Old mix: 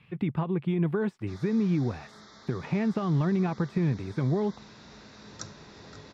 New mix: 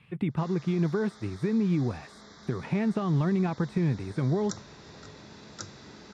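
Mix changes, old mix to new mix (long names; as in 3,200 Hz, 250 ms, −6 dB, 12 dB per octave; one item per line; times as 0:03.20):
background: entry −0.90 s
master: add parametric band 8,800 Hz +12.5 dB 0.32 octaves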